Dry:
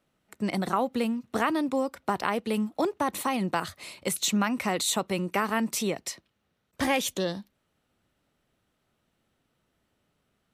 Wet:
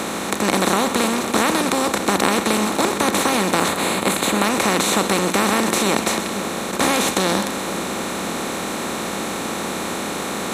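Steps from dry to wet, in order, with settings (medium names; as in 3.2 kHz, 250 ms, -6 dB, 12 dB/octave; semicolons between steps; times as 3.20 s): spectral levelling over time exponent 0.2; 3.68–4.44 s: peaking EQ 5.7 kHz -9 dB 0.34 oct; two-band feedback delay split 720 Hz, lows 509 ms, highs 127 ms, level -11.5 dB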